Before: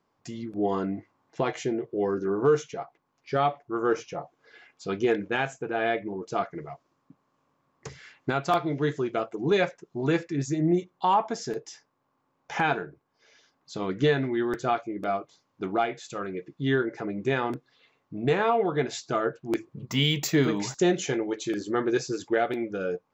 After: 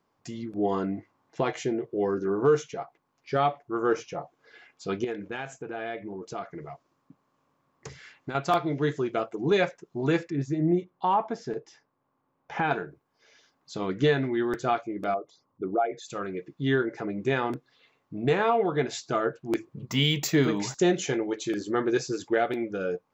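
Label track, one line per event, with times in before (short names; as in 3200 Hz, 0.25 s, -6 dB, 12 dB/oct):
5.040000	8.350000	compressor 2:1, threshold -36 dBFS
10.300000	12.710000	tape spacing loss at 10 kHz 20 dB
15.140000	16.080000	formant sharpening exponent 2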